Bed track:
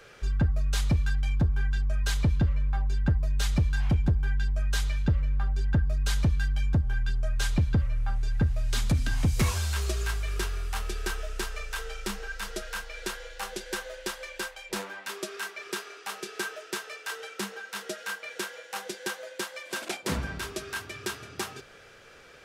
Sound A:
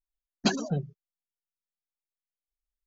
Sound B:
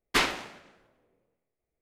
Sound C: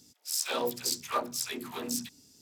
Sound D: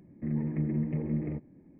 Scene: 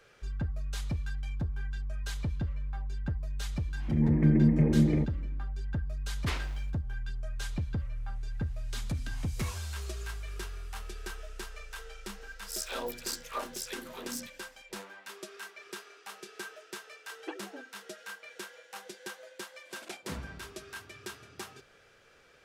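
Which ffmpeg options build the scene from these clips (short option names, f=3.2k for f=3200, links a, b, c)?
-filter_complex "[0:a]volume=-9dB[a];[4:a]dynaudnorm=f=130:g=5:m=11.5dB[b];[2:a]aeval=exprs='val(0)*gte(abs(val(0)),0.00398)':c=same[c];[1:a]highpass=f=190:t=q:w=0.5412,highpass=f=190:t=q:w=1.307,lowpass=f=2.9k:t=q:w=0.5176,lowpass=f=2.9k:t=q:w=0.7071,lowpass=f=2.9k:t=q:w=1.932,afreqshift=110[d];[b]atrim=end=1.79,asetpts=PTS-STARTPTS,volume=-4dB,afade=t=in:d=0.004:c=hsin,afade=t=out:st=1.786:d=0.004:c=hsin,adelay=3660[e];[c]atrim=end=1.81,asetpts=PTS-STARTPTS,volume=-12.5dB,afade=t=in:d=0.004:c=hsin,afade=t=out:st=1.806:d=0.004:c=hsin,adelay=6120[f];[3:a]atrim=end=2.41,asetpts=PTS-STARTPTS,volume=-6dB,afade=t=in:d=0.004:c=hsin,afade=t=out:st=2.406:d=0.004:c=hsin,adelay=12210[g];[d]atrim=end=2.86,asetpts=PTS-STARTPTS,volume=-14dB,afade=t=in:d=0.004:c=hsin,afade=t=out:st=2.856:d=0.004:c=hsin,adelay=16820[h];[a][e][f][g][h]amix=inputs=5:normalize=0"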